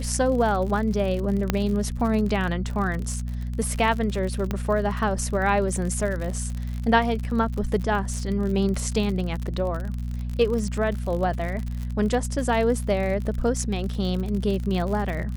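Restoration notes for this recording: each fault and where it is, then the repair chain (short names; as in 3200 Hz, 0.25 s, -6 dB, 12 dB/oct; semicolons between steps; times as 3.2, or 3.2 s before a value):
crackle 53/s -29 dBFS
hum 60 Hz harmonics 4 -29 dBFS
1.5 pop -7 dBFS
4.51 pop -13 dBFS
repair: de-click; de-hum 60 Hz, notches 4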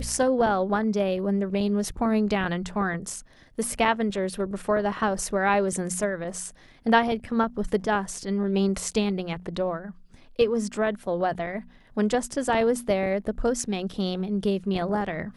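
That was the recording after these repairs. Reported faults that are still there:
none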